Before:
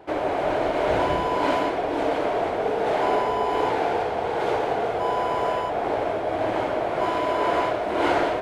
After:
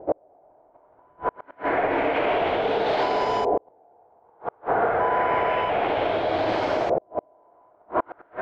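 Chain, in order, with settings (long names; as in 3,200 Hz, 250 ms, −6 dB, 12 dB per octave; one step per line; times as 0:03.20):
mains-hum notches 60/120/180/240/300/360/420 Hz
brickwall limiter −17.5 dBFS, peak gain reduction 6.5 dB
auto-filter low-pass saw up 0.29 Hz 560–6,000 Hz
gate with flip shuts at −14 dBFS, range −38 dB
level +2.5 dB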